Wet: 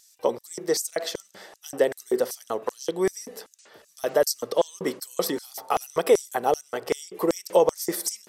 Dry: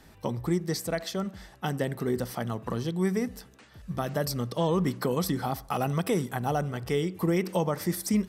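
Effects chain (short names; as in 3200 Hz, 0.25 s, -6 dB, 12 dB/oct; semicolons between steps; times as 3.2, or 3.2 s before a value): 5.29–5.74 whine 900 Hz -53 dBFS; LFO high-pass square 2.6 Hz 460–6300 Hz; vibrato 12 Hz 21 cents; gain +4.5 dB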